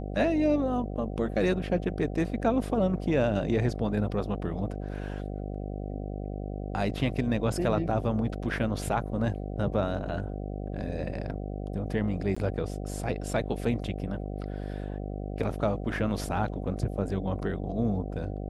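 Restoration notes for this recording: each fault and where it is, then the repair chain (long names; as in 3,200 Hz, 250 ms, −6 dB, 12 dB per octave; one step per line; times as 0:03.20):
mains buzz 50 Hz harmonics 15 −35 dBFS
0:12.35–0:12.37: drop-out 15 ms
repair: hum removal 50 Hz, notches 15
repair the gap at 0:12.35, 15 ms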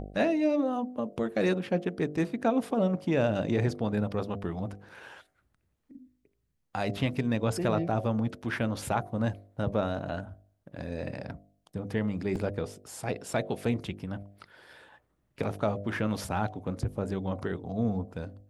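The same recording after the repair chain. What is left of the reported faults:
none of them is left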